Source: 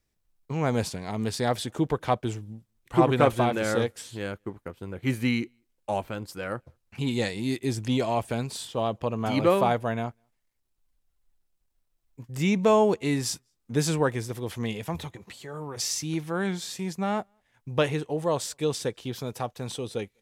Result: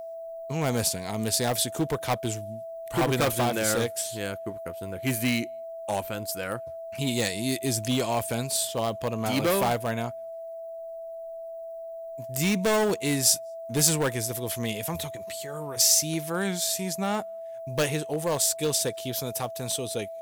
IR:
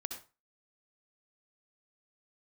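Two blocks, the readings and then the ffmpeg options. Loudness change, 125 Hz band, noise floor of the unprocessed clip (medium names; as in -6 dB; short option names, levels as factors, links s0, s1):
+1.0 dB, -1.5 dB, -75 dBFS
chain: -af "aeval=exprs='val(0)+0.0178*sin(2*PI*660*n/s)':c=same,asoftclip=type=hard:threshold=0.106,aemphasis=mode=production:type=75fm"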